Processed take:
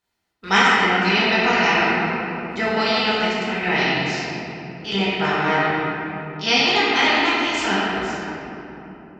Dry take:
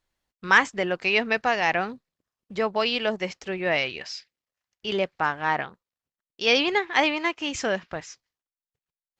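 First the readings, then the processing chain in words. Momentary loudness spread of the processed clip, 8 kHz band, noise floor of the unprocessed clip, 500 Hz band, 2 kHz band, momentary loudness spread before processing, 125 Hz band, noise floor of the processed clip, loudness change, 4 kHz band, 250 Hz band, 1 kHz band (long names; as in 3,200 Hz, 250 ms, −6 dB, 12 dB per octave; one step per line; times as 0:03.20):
13 LU, +5.5 dB, below −85 dBFS, +3.5 dB, +6.0 dB, 16 LU, +11.5 dB, −44 dBFS, +5.5 dB, +7.5 dB, +8.5 dB, +7.0 dB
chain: ceiling on every frequency bin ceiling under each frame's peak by 15 dB
notch comb filter 560 Hz
rectangular room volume 170 cubic metres, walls hard, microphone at 1.2 metres
level −1.5 dB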